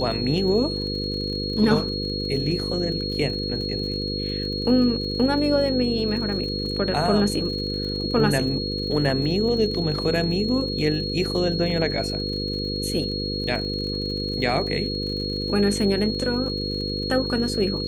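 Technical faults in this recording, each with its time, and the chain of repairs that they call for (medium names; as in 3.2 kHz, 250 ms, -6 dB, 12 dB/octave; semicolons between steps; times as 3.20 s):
buzz 50 Hz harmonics 10 -29 dBFS
crackle 50 per s -33 dBFS
whine 4.3 kHz -29 dBFS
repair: de-click; de-hum 50 Hz, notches 10; band-stop 4.3 kHz, Q 30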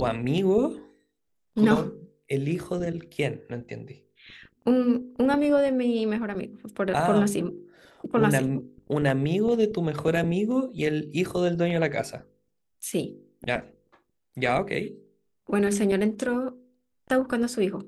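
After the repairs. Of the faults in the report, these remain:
nothing left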